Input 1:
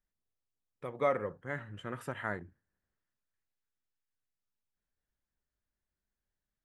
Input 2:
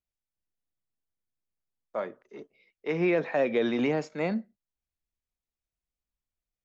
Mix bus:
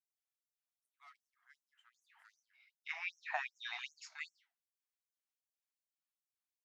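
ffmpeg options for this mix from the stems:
-filter_complex "[0:a]highpass=1.3k,asoftclip=type=tanh:threshold=-33dB,volume=-14.5dB,asplit=2[a][b];[b]volume=-13dB[c];[1:a]volume=1dB,asplit=2[d][e];[e]apad=whole_len=293232[f];[a][f]sidechaincompress=threshold=-41dB:ratio=8:attack=5.1:release=255[g];[c]aecho=0:1:177|354|531:1|0.18|0.0324[h];[g][d][h]amix=inputs=3:normalize=0,flanger=delay=7.9:depth=7.7:regen=-78:speed=1.8:shape=triangular,afftfilt=real='re*gte(b*sr/1024,630*pow(5600/630,0.5+0.5*sin(2*PI*2.6*pts/sr)))':imag='im*gte(b*sr/1024,630*pow(5600/630,0.5+0.5*sin(2*PI*2.6*pts/sr)))':win_size=1024:overlap=0.75"

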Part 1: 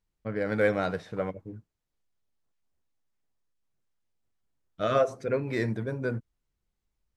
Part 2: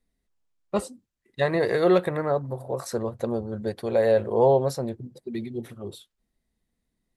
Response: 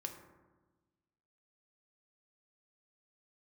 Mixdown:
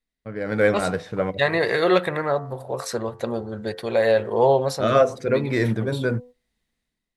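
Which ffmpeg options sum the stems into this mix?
-filter_complex "[0:a]bandreject=f=246.9:t=h:w=4,bandreject=f=493.8:t=h:w=4,bandreject=f=740.7:t=h:w=4,bandreject=f=987.6:t=h:w=4,agate=range=-18dB:threshold=-47dB:ratio=16:detection=peak,volume=-3dB[a];[1:a]equalizer=f=2.7k:w=0.39:g=10,bandreject=f=88.41:t=h:w=4,bandreject=f=176.82:t=h:w=4,bandreject=f=265.23:t=h:w=4,bandreject=f=353.64:t=h:w=4,bandreject=f=442.05:t=h:w=4,bandreject=f=530.46:t=h:w=4,bandreject=f=618.87:t=h:w=4,bandreject=f=707.28:t=h:w=4,bandreject=f=795.69:t=h:w=4,bandreject=f=884.1:t=h:w=4,bandreject=f=972.51:t=h:w=4,bandreject=f=1.06092k:t=h:w=4,bandreject=f=1.14933k:t=h:w=4,bandreject=f=1.23774k:t=h:w=4,bandreject=f=1.32615k:t=h:w=4,bandreject=f=1.41456k:t=h:w=4,bandreject=f=1.50297k:t=h:w=4,bandreject=f=1.59138k:t=h:w=4,bandreject=f=1.67979k:t=h:w=4,bandreject=f=1.7682k:t=h:w=4,bandreject=f=1.85661k:t=h:w=4,bandreject=f=1.94502k:t=h:w=4,volume=-11dB,asplit=2[b][c];[c]apad=whole_len=315981[d];[a][d]sidechaincompress=threshold=-37dB:ratio=8:attack=32:release=143[e];[e][b]amix=inputs=2:normalize=0,dynaudnorm=f=200:g=5:m=10.5dB"

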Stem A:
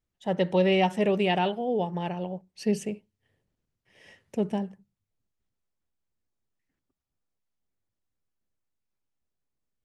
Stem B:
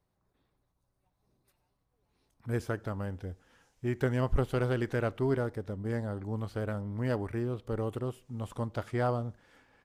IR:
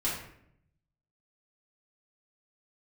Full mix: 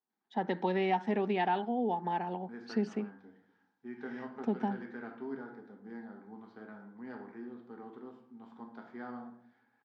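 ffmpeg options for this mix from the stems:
-filter_complex "[0:a]adelay=100,volume=-2dB[a];[1:a]volume=-19.5dB,asplit=2[b][c];[c]volume=-3.5dB[d];[2:a]atrim=start_sample=2205[e];[d][e]afir=irnorm=-1:irlink=0[f];[a][b][f]amix=inputs=3:normalize=0,highpass=f=220:w=0.5412,highpass=f=220:w=1.3066,equalizer=f=230:t=q:w=4:g=8,equalizer=f=570:t=q:w=4:g=-10,equalizer=f=830:t=q:w=4:g=9,equalizer=f=1.6k:t=q:w=4:g=6,equalizer=f=2.8k:t=q:w=4:g=-9,lowpass=f=4.5k:w=0.5412,lowpass=f=4.5k:w=1.3066,acompressor=threshold=-30dB:ratio=2"

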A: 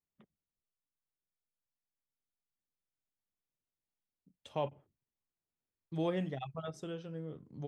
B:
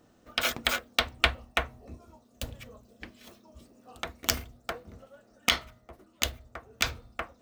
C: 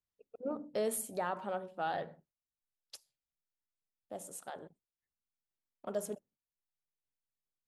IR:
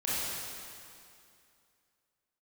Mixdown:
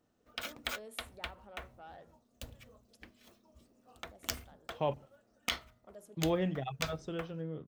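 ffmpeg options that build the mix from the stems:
-filter_complex "[0:a]lowpass=5.2k,adelay=250,volume=-1.5dB[a];[1:a]acrusher=bits=6:mode=log:mix=0:aa=0.000001,volume=-14dB[b];[2:a]asoftclip=type=tanh:threshold=-25.5dB,volume=-19.5dB,asplit=2[c][d];[d]apad=whole_len=326844[e];[b][e]sidechaincompress=threshold=-60dB:ratio=8:attack=11:release=198[f];[a][f][c]amix=inputs=3:normalize=0,dynaudnorm=f=150:g=5:m=4dB"

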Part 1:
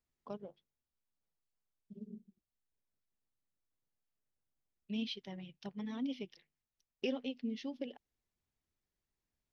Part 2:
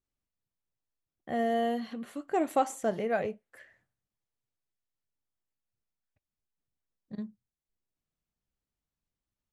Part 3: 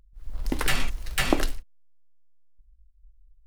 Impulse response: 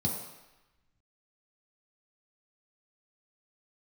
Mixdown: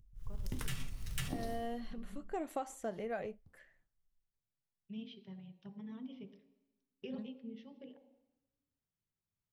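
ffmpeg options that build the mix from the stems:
-filter_complex "[0:a]lowpass=3.4k,volume=-9.5dB,asplit=2[a][b];[b]volume=-12dB[c];[1:a]volume=-8.5dB,asplit=2[d][e];[2:a]equalizer=f=750:w=0.42:g=-10,volume=-3dB,asplit=2[f][g];[g]volume=-13dB[h];[e]apad=whole_len=152678[i];[f][i]sidechaincompress=threshold=-55dB:ratio=8:attack=11:release=833[j];[3:a]atrim=start_sample=2205[k];[c][h]amix=inputs=2:normalize=0[l];[l][k]afir=irnorm=-1:irlink=0[m];[a][d][j][m]amix=inputs=4:normalize=0,acompressor=threshold=-34dB:ratio=8"

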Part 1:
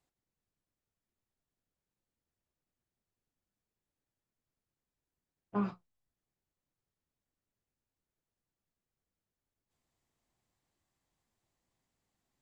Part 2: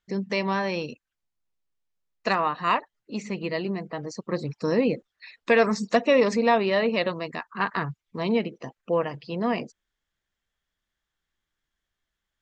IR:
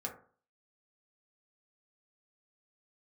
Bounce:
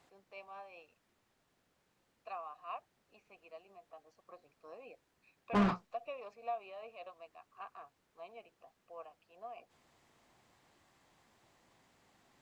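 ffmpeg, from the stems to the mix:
-filter_complex "[0:a]lowshelf=f=230:g=7.5,asplit=2[a][b];[b]highpass=f=720:p=1,volume=26dB,asoftclip=type=tanh:threshold=-23.5dB[c];[a][c]amix=inputs=2:normalize=0,lowpass=f=2.3k:p=1,volume=-6dB,volume=0.5dB[d];[1:a]highpass=f=500:p=1,tremolo=f=5.1:d=0.42,asplit=3[e][f][g];[e]bandpass=f=730:t=q:w=8,volume=0dB[h];[f]bandpass=f=1.09k:t=q:w=8,volume=-6dB[i];[g]bandpass=f=2.44k:t=q:w=8,volume=-9dB[j];[h][i][j]amix=inputs=3:normalize=0,volume=-9.5dB[k];[d][k]amix=inputs=2:normalize=0"

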